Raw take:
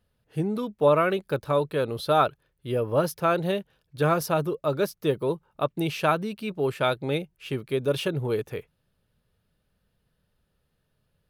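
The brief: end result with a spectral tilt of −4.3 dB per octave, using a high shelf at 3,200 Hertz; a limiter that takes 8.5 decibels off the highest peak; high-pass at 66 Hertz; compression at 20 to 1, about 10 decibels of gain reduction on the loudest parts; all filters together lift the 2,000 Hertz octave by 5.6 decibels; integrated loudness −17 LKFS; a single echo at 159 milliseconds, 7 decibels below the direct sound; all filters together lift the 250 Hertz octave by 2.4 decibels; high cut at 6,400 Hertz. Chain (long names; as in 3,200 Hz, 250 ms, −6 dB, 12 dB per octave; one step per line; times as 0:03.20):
high-pass filter 66 Hz
low-pass filter 6,400 Hz
parametric band 250 Hz +3.5 dB
parametric band 2,000 Hz +5 dB
high-shelf EQ 3,200 Hz +8.5 dB
downward compressor 20 to 1, threshold −23 dBFS
brickwall limiter −19.5 dBFS
single-tap delay 159 ms −7 dB
level +13.5 dB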